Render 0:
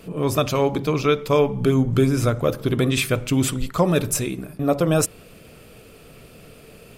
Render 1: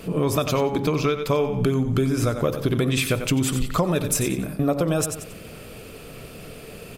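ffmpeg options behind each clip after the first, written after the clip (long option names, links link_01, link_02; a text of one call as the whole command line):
ffmpeg -i in.wav -filter_complex "[0:a]asplit=2[link_01][link_02];[link_02]aecho=0:1:91|182|273:0.282|0.0733|0.0191[link_03];[link_01][link_03]amix=inputs=2:normalize=0,acompressor=threshold=-24dB:ratio=6,volume=5.5dB" out.wav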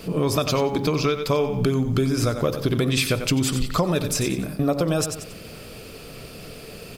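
ffmpeg -i in.wav -filter_complex "[0:a]equalizer=frequency=4800:width=2.3:gain=7.5,acrossover=split=6900[link_01][link_02];[link_02]alimiter=limit=-20.5dB:level=0:latency=1:release=395[link_03];[link_01][link_03]amix=inputs=2:normalize=0,acrusher=bits=9:mix=0:aa=0.000001" out.wav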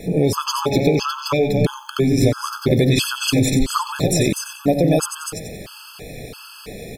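ffmpeg -i in.wav -filter_complex "[0:a]asplit=2[link_01][link_02];[link_02]aecho=0:1:246:0.596[link_03];[link_01][link_03]amix=inputs=2:normalize=0,afftfilt=real='re*gt(sin(2*PI*1.5*pts/sr)*(1-2*mod(floor(b*sr/1024/860),2)),0)':imag='im*gt(sin(2*PI*1.5*pts/sr)*(1-2*mod(floor(b*sr/1024/860),2)),0)':win_size=1024:overlap=0.75,volume=5.5dB" out.wav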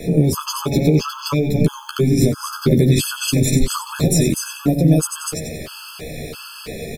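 ffmpeg -i in.wav -filter_complex "[0:a]equalizer=frequency=810:width=7.5:gain=-6,acrossover=split=340|6500[link_01][link_02][link_03];[link_02]acompressor=threshold=-30dB:ratio=4[link_04];[link_01][link_04][link_03]amix=inputs=3:normalize=0,asplit=2[link_05][link_06];[link_06]adelay=13,volume=-4.5dB[link_07];[link_05][link_07]amix=inputs=2:normalize=0,volume=3dB" out.wav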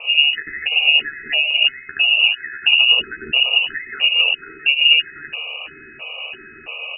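ffmpeg -i in.wav -af "highpass=frequency=49:width=0.5412,highpass=frequency=49:width=1.3066,aeval=exprs='val(0)+0.00562*sin(2*PI*450*n/s)':channel_layout=same,lowpass=frequency=2600:width_type=q:width=0.5098,lowpass=frequency=2600:width_type=q:width=0.6013,lowpass=frequency=2600:width_type=q:width=0.9,lowpass=frequency=2600:width_type=q:width=2.563,afreqshift=-3000" out.wav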